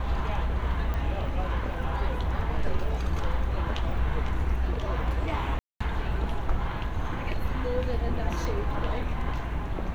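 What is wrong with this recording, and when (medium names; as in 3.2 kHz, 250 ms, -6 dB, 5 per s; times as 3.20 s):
0.94 s: pop -21 dBFS
5.59–5.80 s: dropout 215 ms
8.45 s: pop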